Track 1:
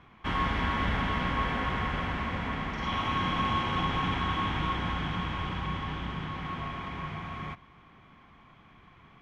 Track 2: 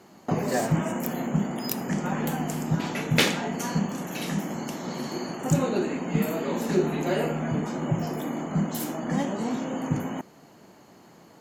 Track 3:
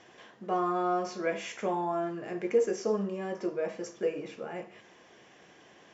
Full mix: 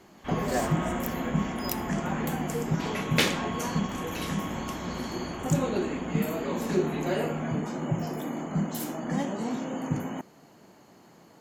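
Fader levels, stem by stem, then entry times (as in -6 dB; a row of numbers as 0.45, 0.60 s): -9.0, -2.5, -9.5 dB; 0.00, 0.00, 0.00 s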